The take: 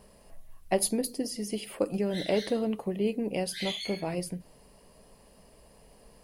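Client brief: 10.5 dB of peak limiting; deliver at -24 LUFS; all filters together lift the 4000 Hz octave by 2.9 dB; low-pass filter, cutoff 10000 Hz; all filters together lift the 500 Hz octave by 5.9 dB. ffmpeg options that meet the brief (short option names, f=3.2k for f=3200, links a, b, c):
-af "lowpass=10k,equalizer=f=500:t=o:g=7,equalizer=f=4k:t=o:g=3.5,volume=6dB,alimiter=limit=-13.5dB:level=0:latency=1"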